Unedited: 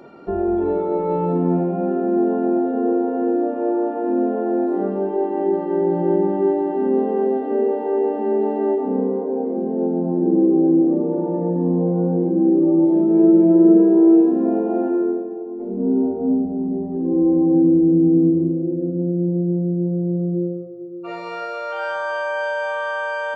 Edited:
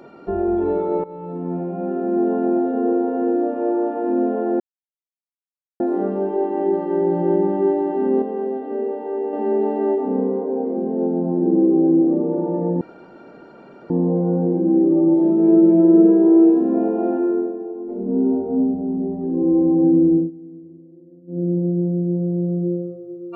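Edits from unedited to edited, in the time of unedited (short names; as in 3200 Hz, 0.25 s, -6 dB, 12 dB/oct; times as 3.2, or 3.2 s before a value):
1.04–2.36 fade in, from -17.5 dB
4.6 insert silence 1.20 s
7.02–8.13 gain -5 dB
11.61 insert room tone 1.09 s
17.86–19.14 dip -23.5 dB, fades 0.16 s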